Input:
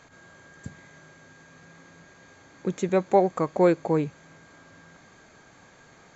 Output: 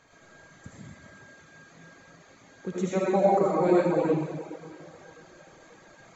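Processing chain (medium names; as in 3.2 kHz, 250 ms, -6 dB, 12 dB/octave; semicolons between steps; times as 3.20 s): thinning echo 536 ms, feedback 64%, high-pass 240 Hz, level -24 dB; algorithmic reverb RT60 1.7 s, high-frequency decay 1×, pre-delay 35 ms, DRR -7.5 dB; reverb removal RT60 0.61 s; trim -7 dB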